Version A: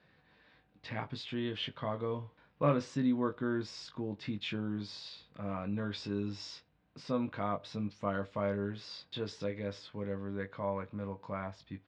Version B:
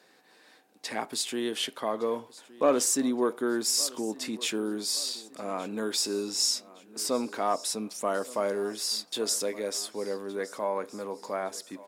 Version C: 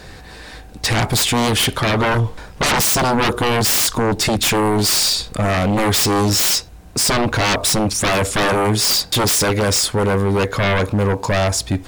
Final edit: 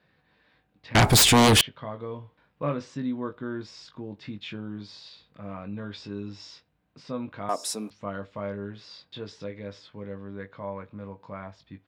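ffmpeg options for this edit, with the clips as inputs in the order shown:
-filter_complex "[0:a]asplit=3[a][b][c];[a]atrim=end=0.952[d];[2:a]atrim=start=0.948:end=1.612[e];[b]atrim=start=1.608:end=7.492[f];[1:a]atrim=start=7.488:end=7.902[g];[c]atrim=start=7.898[h];[d][e]acrossfade=d=0.004:c1=hsin:c2=hsin[i];[i][f]acrossfade=d=0.004:c1=hsin:c2=hsin[j];[j][g]acrossfade=d=0.004:c1=hsin:c2=hsin[k];[k][h]acrossfade=d=0.004:c1=hsin:c2=hsin"

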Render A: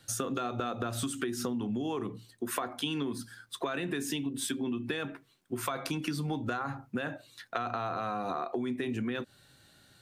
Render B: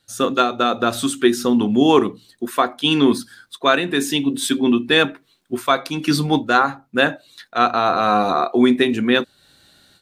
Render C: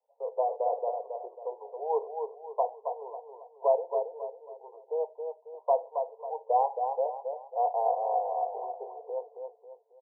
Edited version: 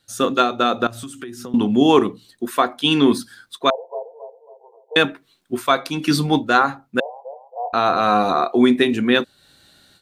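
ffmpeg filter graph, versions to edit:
-filter_complex "[2:a]asplit=2[a][b];[1:a]asplit=4[c][d][e][f];[c]atrim=end=0.872[g];[0:a]atrim=start=0.868:end=1.542[h];[d]atrim=start=1.538:end=3.702[i];[a]atrim=start=3.698:end=4.962[j];[e]atrim=start=4.958:end=7.002[k];[b]atrim=start=6.998:end=7.732[l];[f]atrim=start=7.728[m];[g][h]acrossfade=d=0.004:c1=hsin:c2=hsin[n];[n][i]acrossfade=d=0.004:c1=hsin:c2=hsin[o];[o][j]acrossfade=d=0.004:c1=hsin:c2=hsin[p];[p][k]acrossfade=d=0.004:c1=hsin:c2=hsin[q];[q][l]acrossfade=d=0.004:c1=hsin:c2=hsin[r];[r][m]acrossfade=d=0.004:c1=hsin:c2=hsin"

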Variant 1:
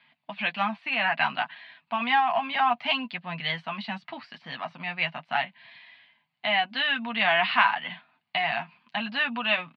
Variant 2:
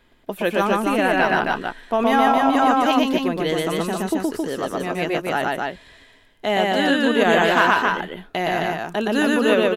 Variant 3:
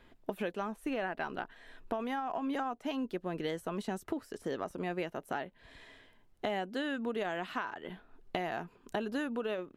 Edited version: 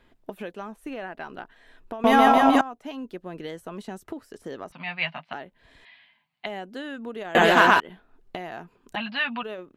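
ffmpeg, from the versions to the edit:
-filter_complex "[1:a]asplit=2[a][b];[0:a]asplit=3[c][d][e];[2:a]asplit=6[f][g][h][i][j][k];[f]atrim=end=2.042[l];[a]atrim=start=2.038:end=2.612[m];[g]atrim=start=2.608:end=4.722[n];[c]atrim=start=4.718:end=5.332[o];[h]atrim=start=5.328:end=5.852[p];[d]atrim=start=5.848:end=6.462[q];[i]atrim=start=6.458:end=7.352[r];[b]atrim=start=7.348:end=7.802[s];[j]atrim=start=7.798:end=8.962[t];[e]atrim=start=8.958:end=9.432[u];[k]atrim=start=9.428[v];[l][m]acrossfade=d=0.004:c1=hsin:c2=hsin[w];[w][n]acrossfade=d=0.004:c1=hsin:c2=hsin[x];[x][o]acrossfade=d=0.004:c1=hsin:c2=hsin[y];[y][p]acrossfade=d=0.004:c1=hsin:c2=hsin[z];[z][q]acrossfade=d=0.004:c1=hsin:c2=hsin[aa];[aa][r]acrossfade=d=0.004:c1=hsin:c2=hsin[ab];[ab][s]acrossfade=d=0.004:c1=hsin:c2=hsin[ac];[ac][t]acrossfade=d=0.004:c1=hsin:c2=hsin[ad];[ad][u]acrossfade=d=0.004:c1=hsin:c2=hsin[ae];[ae][v]acrossfade=d=0.004:c1=hsin:c2=hsin"

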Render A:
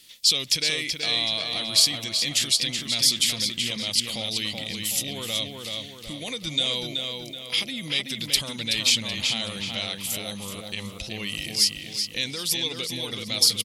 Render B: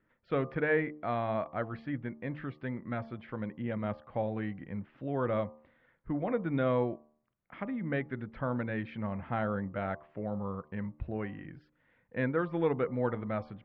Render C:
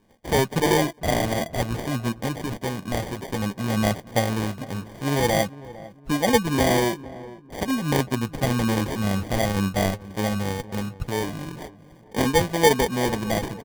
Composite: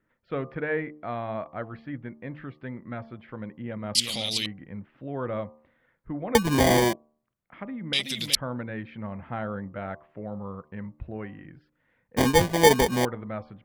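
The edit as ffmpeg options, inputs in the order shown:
-filter_complex "[0:a]asplit=2[a][b];[2:a]asplit=2[c][d];[1:a]asplit=5[e][f][g][h][i];[e]atrim=end=3.952[j];[a]atrim=start=3.948:end=4.462[k];[f]atrim=start=4.458:end=6.352[l];[c]atrim=start=6.348:end=6.932[m];[g]atrim=start=6.928:end=7.932[n];[b]atrim=start=7.928:end=8.352[o];[h]atrim=start=8.348:end=12.172[p];[d]atrim=start=12.168:end=13.052[q];[i]atrim=start=13.048[r];[j][k]acrossfade=d=0.004:c1=hsin:c2=hsin[s];[s][l]acrossfade=d=0.004:c1=hsin:c2=hsin[t];[t][m]acrossfade=d=0.004:c1=hsin:c2=hsin[u];[u][n]acrossfade=d=0.004:c1=hsin:c2=hsin[v];[v][o]acrossfade=d=0.004:c1=hsin:c2=hsin[w];[w][p]acrossfade=d=0.004:c1=hsin:c2=hsin[x];[x][q]acrossfade=d=0.004:c1=hsin:c2=hsin[y];[y][r]acrossfade=d=0.004:c1=hsin:c2=hsin"

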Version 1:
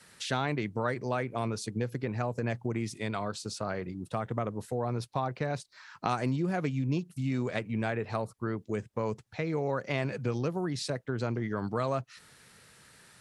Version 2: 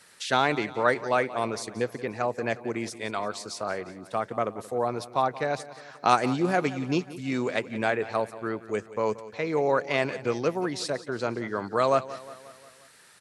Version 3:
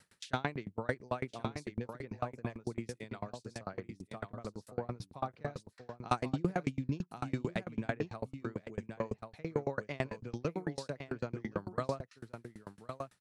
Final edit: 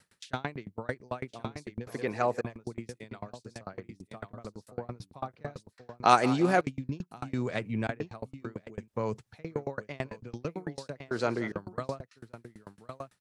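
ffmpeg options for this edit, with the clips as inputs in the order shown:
-filter_complex "[1:a]asplit=3[a][b][c];[0:a]asplit=2[d][e];[2:a]asplit=6[f][g][h][i][j][k];[f]atrim=end=1.872[l];[a]atrim=start=1.868:end=2.412[m];[g]atrim=start=2.408:end=6.032[n];[b]atrim=start=6.028:end=6.612[o];[h]atrim=start=6.608:end=7.342[p];[d]atrim=start=7.338:end=7.872[q];[i]atrim=start=7.868:end=8.882[r];[e]atrim=start=8.878:end=9.342[s];[j]atrim=start=9.338:end=11.112[t];[c]atrim=start=11.108:end=11.522[u];[k]atrim=start=11.518[v];[l][m]acrossfade=d=0.004:c1=hsin:c2=hsin[w];[w][n]acrossfade=d=0.004:c1=hsin:c2=hsin[x];[x][o]acrossfade=d=0.004:c1=hsin:c2=hsin[y];[y][p]acrossfade=d=0.004:c1=hsin:c2=hsin[z];[z][q]acrossfade=d=0.004:c1=hsin:c2=hsin[aa];[aa][r]acrossfade=d=0.004:c1=hsin:c2=hsin[ab];[ab][s]acrossfade=d=0.004:c1=hsin:c2=hsin[ac];[ac][t]acrossfade=d=0.004:c1=hsin:c2=hsin[ad];[ad][u]acrossfade=d=0.004:c1=hsin:c2=hsin[ae];[ae][v]acrossfade=d=0.004:c1=hsin:c2=hsin"

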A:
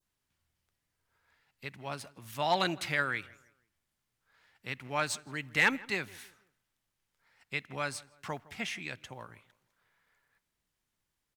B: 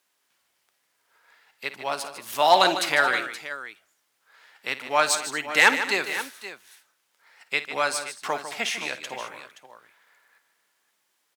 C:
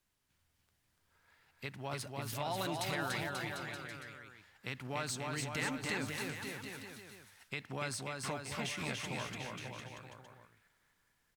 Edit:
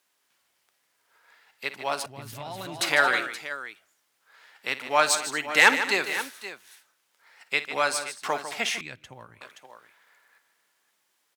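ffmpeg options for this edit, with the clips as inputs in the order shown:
-filter_complex "[1:a]asplit=3[a][b][c];[a]atrim=end=2.062[d];[2:a]atrim=start=2.058:end=2.812[e];[b]atrim=start=2.808:end=8.812[f];[0:a]atrim=start=8.808:end=9.412[g];[c]atrim=start=9.408[h];[d][e]acrossfade=d=0.004:c1=hsin:c2=hsin[i];[i][f]acrossfade=d=0.004:c1=hsin:c2=hsin[j];[j][g]acrossfade=d=0.004:c1=hsin:c2=hsin[k];[k][h]acrossfade=d=0.004:c1=hsin:c2=hsin"

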